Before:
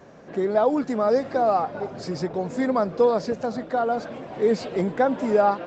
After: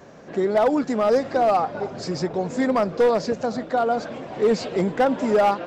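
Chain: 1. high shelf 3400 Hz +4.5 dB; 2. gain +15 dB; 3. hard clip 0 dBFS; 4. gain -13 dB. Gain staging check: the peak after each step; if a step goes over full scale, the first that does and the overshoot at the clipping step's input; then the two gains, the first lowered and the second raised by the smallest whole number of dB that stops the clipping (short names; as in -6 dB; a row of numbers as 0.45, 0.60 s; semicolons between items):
-8.0, +7.0, 0.0, -13.0 dBFS; step 2, 7.0 dB; step 2 +8 dB, step 4 -6 dB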